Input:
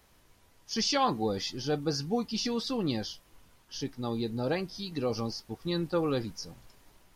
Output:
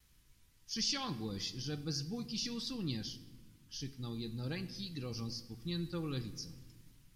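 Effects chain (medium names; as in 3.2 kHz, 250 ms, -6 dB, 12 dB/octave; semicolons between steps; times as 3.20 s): gate with hold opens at -56 dBFS; amplifier tone stack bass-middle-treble 6-0-2; on a send: reverberation RT60 1.3 s, pre-delay 6 ms, DRR 11 dB; on the sum: trim +10.5 dB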